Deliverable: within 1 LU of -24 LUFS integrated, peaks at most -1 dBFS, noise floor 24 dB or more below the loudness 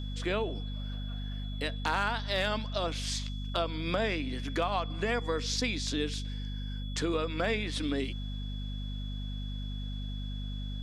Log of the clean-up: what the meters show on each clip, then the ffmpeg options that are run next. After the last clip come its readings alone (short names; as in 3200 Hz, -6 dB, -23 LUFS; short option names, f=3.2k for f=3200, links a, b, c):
hum 50 Hz; harmonics up to 250 Hz; hum level -34 dBFS; steady tone 3400 Hz; tone level -47 dBFS; loudness -33.5 LUFS; peak -17.0 dBFS; loudness target -24.0 LUFS
-> -af "bandreject=f=50:t=h:w=4,bandreject=f=100:t=h:w=4,bandreject=f=150:t=h:w=4,bandreject=f=200:t=h:w=4,bandreject=f=250:t=h:w=4"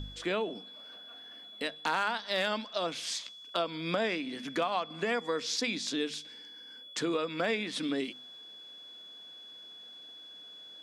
hum none; steady tone 3400 Hz; tone level -47 dBFS
-> -af "bandreject=f=3.4k:w=30"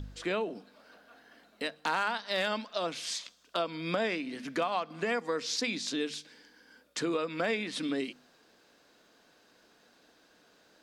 steady tone none; loudness -33.5 LUFS; peak -18.5 dBFS; loudness target -24.0 LUFS
-> -af "volume=9.5dB"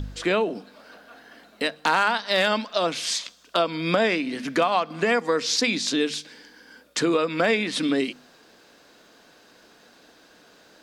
loudness -24.0 LUFS; peak -9.0 dBFS; noise floor -55 dBFS